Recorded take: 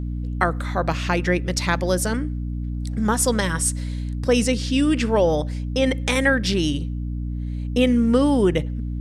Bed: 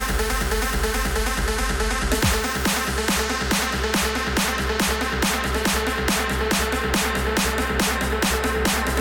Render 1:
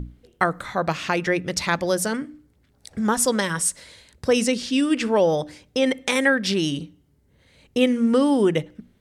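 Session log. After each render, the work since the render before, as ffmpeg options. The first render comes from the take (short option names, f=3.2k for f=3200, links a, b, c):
-af "bandreject=f=60:t=h:w=6,bandreject=f=120:t=h:w=6,bandreject=f=180:t=h:w=6,bandreject=f=240:t=h:w=6,bandreject=f=300:t=h:w=6"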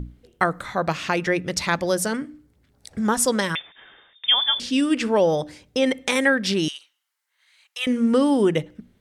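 -filter_complex "[0:a]asettb=1/sr,asplit=3[a][b][c];[a]atrim=end=3.554[d];[b]atrim=start=3.55:end=4.6,asetpts=PTS-STARTPTS,afade=t=in:d=0.004:c=qsin,afade=t=out:st=1.046:d=0.004:c=qsin,lowpass=f=3.1k:t=q:w=0.5098,lowpass=f=3.1k:t=q:w=0.6013,lowpass=f=3.1k:t=q:w=0.9,lowpass=f=3.1k:t=q:w=2.563,afreqshift=-3700[e];[c]atrim=start=4.596[f];[d][e]acrossfade=d=0.004:c1=hsin:c2=qsin[g];[g][f]acrossfade=d=0.004:c1=qsin:c2=hsin,asettb=1/sr,asplit=3[h][i][j];[h]atrim=end=6.684[k];[i]atrim=start=6.68:end=7.87,asetpts=PTS-STARTPTS,afade=t=in:d=0.004:c=qsin,afade=t=out:st=1.186:d=0.004:c=qsin,highpass=f=1.1k:w=0.5412,highpass=f=1.1k:w=1.3066[l];[j]atrim=start=7.866[m];[k][l]acrossfade=d=0.004:c1=hsin:c2=qsin[n];[n][m]acrossfade=d=0.004:c1=qsin:c2=hsin"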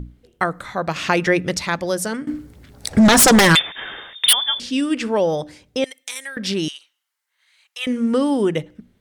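-filter_complex "[0:a]asettb=1/sr,asplit=3[a][b][c];[a]atrim=end=2.274[d];[b]atrim=start=2.27:end=4.33,asetpts=PTS-STARTPTS,afade=t=in:d=0.004:c=qsin,afade=t=out:st=2.056:d=0.004:c=qsin,aeval=exprs='0.422*sin(PI/2*4.47*val(0)/0.422)':c=same[e];[c]atrim=start=4.326[f];[d][e]acrossfade=d=0.004:c1=hsin:c2=qsin[g];[g][f]acrossfade=d=0.004:c1=qsin:c2=hsin,asettb=1/sr,asplit=3[h][i][j];[h]atrim=end=5.844[k];[i]atrim=start=5.84:end=6.37,asetpts=PTS-STARTPTS,afade=t=in:d=0.004:c=qsin,afade=t=out:st=0.526:d=0.004:c=qsin,aderivative[l];[j]atrim=start=6.366[m];[k][l]acrossfade=d=0.004:c1=hsin:c2=qsin[n];[n][m]acrossfade=d=0.004:c1=qsin:c2=hsin,asplit=3[o][p][q];[o]atrim=end=0.962[r];[p]atrim=start=0.958:end=1.572,asetpts=PTS-STARTPTS,volume=5dB[s];[q]atrim=start=1.568[t];[r][s]acrossfade=d=0.004:c1=hsin:c2=hsin[u];[u][t]acrossfade=d=0.004:c1=hsin:c2=hsin"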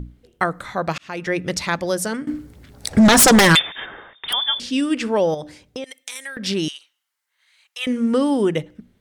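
-filter_complex "[0:a]asplit=3[a][b][c];[a]afade=t=out:st=3.85:d=0.02[d];[b]lowpass=1.5k,afade=t=in:st=3.85:d=0.02,afade=t=out:st=4.32:d=0.02[e];[c]afade=t=in:st=4.32:d=0.02[f];[d][e][f]amix=inputs=3:normalize=0,asettb=1/sr,asplit=3[g][h][i];[g]atrim=end=5.344[j];[h]atrim=start=5.34:end=6.46,asetpts=PTS-STARTPTS,afade=t=in:d=0.004:c=qsin,afade=t=out:st=1.116:d=0.004:c=qsin,acompressor=threshold=-26dB:ratio=6:attack=3.2:release=140:knee=1:detection=peak[k];[i]atrim=start=6.456[l];[j][k]acrossfade=d=0.004:c1=hsin:c2=qsin[m];[m][l]acrossfade=d=0.004:c1=qsin:c2=hsin,asplit=2[n][o];[n]atrim=end=0.98,asetpts=PTS-STARTPTS,afade=t=out:st=0.976:d=0.004:c=hsin[p];[o]atrim=start=0.98,asetpts=PTS-STARTPTS,afade=t=in:d=0.64[q];[p][q]concat=n=2:v=0:a=1"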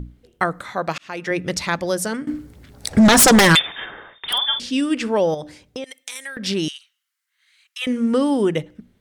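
-filter_complex "[0:a]asettb=1/sr,asplit=3[a][b][c];[a]atrim=end=0.614[d];[b]atrim=start=0.61:end=1.31,asetpts=PTS-STARTPTS,afade=t=in:d=0.004:c=qsin,afade=t=out:st=0.696:d=0.004:c=qsin,highpass=f=200:p=1[e];[c]atrim=start=1.306[f];[d][e]acrossfade=d=0.004:c1=hsin:c2=qsin[g];[g][f]acrossfade=d=0.004:c1=qsin:c2=hsin,asettb=1/sr,asplit=3[h][i][j];[h]atrim=end=3.594[k];[i]atrim=start=3.59:end=4.59,asetpts=PTS-STARTPTS,afade=t=in:d=0.004:c=qsin,afade=t=out:st=0.996:d=0.004:c=qsin,asplit=2[l][m];[m]adelay=49,volume=-10dB[n];[l][n]amix=inputs=2:normalize=0,atrim=end_sample=44100[o];[j]atrim=start=4.586[p];[k][o]acrossfade=d=0.004:c1=hsin:c2=qsin[q];[q][p]acrossfade=d=0.004:c1=qsin:c2=hsin,asettb=1/sr,asplit=3[r][s][t];[r]atrim=end=6.684[u];[s]atrim=start=6.68:end=7.82,asetpts=PTS-STARTPTS,afade=t=in:d=0.004:c=qsin,afade=t=out:st=1.136:d=0.004:c=qsin,highpass=f=1.2k:w=0.5412,highpass=f=1.2k:w=1.3066[v];[t]atrim=start=7.816[w];[u][v]acrossfade=d=0.004:c1=hsin:c2=qsin[x];[x][w]acrossfade=d=0.004:c1=qsin:c2=hsin"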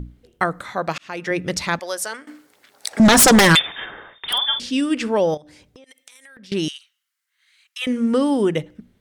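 -filter_complex "[0:a]asettb=1/sr,asplit=3[a][b][c];[a]atrim=end=1.794[d];[b]atrim=start=1.79:end=3,asetpts=PTS-STARTPTS,afade=t=in:d=0.004:c=qsin,afade=t=out:st=1.206:d=0.004:c=qsin,highpass=690[e];[c]atrim=start=2.996[f];[d][e]acrossfade=d=0.004:c1=hsin:c2=qsin[g];[g][f]acrossfade=d=0.004:c1=qsin:c2=hsin,asettb=1/sr,asplit=3[h][i][j];[h]atrim=end=5.374[k];[i]atrim=start=5.37:end=6.52,asetpts=PTS-STARTPTS,afade=t=in:d=0.004:c=qsin,afade=t=out:st=1.146:d=0.004:c=qsin,acompressor=threshold=-43dB:ratio=8:attack=3.2:release=140:knee=1:detection=peak[l];[j]atrim=start=6.516[m];[k][l]acrossfade=d=0.004:c1=hsin:c2=qsin[n];[n][m]acrossfade=d=0.004:c1=qsin:c2=hsin"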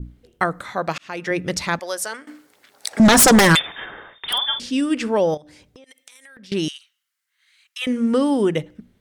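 -af "adynamicequalizer=threshold=0.0224:dfrequency=3400:dqfactor=1:tfrequency=3400:tqfactor=1:attack=5:release=100:ratio=0.375:range=2.5:mode=cutabove:tftype=bell"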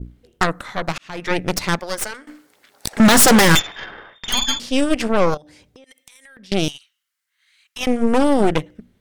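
-af "aeval=exprs='0.668*(cos(1*acos(clip(val(0)/0.668,-1,1)))-cos(1*PI/2))+0.133*(cos(8*acos(clip(val(0)/0.668,-1,1)))-cos(8*PI/2))':c=same"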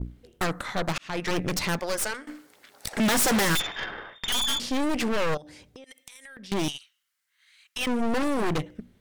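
-af "asoftclip=type=hard:threshold=-20dB"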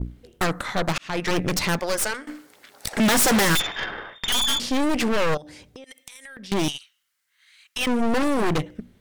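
-af "volume=4dB"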